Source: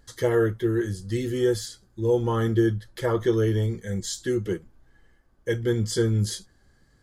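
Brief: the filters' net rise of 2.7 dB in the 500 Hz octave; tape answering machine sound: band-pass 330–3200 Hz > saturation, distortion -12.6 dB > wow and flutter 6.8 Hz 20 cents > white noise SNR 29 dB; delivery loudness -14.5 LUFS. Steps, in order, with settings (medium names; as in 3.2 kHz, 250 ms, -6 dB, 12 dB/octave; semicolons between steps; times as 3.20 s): band-pass 330–3200 Hz; peaking EQ 500 Hz +5 dB; saturation -18 dBFS; wow and flutter 6.8 Hz 20 cents; white noise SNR 29 dB; trim +13.5 dB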